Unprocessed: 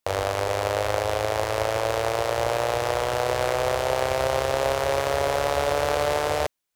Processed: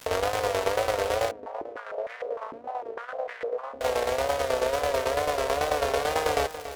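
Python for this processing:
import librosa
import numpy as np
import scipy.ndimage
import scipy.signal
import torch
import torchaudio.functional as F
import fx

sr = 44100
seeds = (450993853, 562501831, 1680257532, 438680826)

y = fx.peak_eq(x, sr, hz=580.0, db=4.5, octaves=0.22)
y = fx.notch(y, sr, hz=820.0, q=12.0)
y = y + 0.77 * np.pad(y, (int(4.2 * sr / 1000.0), 0))[:len(y)]
y = fx.rider(y, sr, range_db=10, speed_s=0.5)
y = fx.dmg_crackle(y, sr, seeds[0], per_s=410.0, level_db=-28.0)
y = fx.tremolo_shape(y, sr, shape='saw_down', hz=9.1, depth_pct=75)
y = fx.wow_flutter(y, sr, seeds[1], rate_hz=2.1, depth_cents=110.0)
y = y + 10.0 ** (-12.0 / 20.0) * np.pad(y, (int(283 * sr / 1000.0), 0))[:len(y)]
y = fx.filter_held_bandpass(y, sr, hz=6.6, low_hz=260.0, high_hz=1900.0, at=(1.31, 3.81))
y = y * librosa.db_to_amplitude(-1.0)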